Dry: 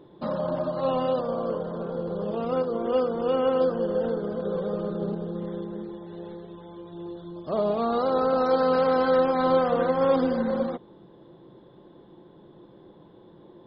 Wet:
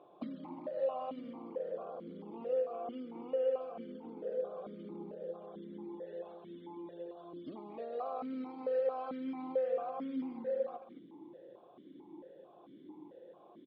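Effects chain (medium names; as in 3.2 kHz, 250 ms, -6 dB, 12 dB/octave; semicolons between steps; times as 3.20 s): compression 6:1, threshold -35 dBFS, peak gain reduction 16.5 dB; speakerphone echo 220 ms, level -8 dB; stepped vowel filter 4.5 Hz; trim +6.5 dB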